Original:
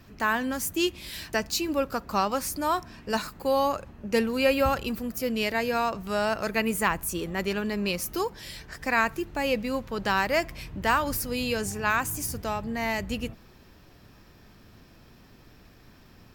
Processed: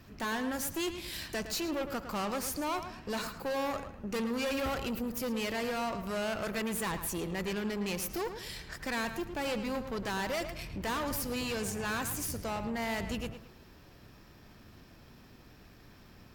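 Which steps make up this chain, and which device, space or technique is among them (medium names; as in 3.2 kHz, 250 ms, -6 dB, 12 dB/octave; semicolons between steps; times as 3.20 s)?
rockabilly slapback (valve stage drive 31 dB, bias 0.5; tape echo 109 ms, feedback 32%, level -8 dB, low-pass 3.7 kHz)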